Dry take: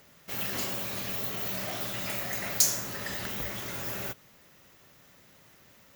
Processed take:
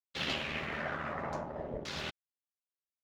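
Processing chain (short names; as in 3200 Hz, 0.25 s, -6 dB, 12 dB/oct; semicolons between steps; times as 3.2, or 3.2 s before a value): granular stretch 0.51×, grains 26 ms; crossover distortion -41.5 dBFS; LFO low-pass saw down 0.54 Hz 510–4700 Hz; gain +4 dB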